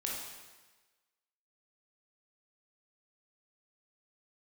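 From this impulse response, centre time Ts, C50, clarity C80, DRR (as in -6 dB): 74 ms, 0.5 dB, 3.5 dB, -3.5 dB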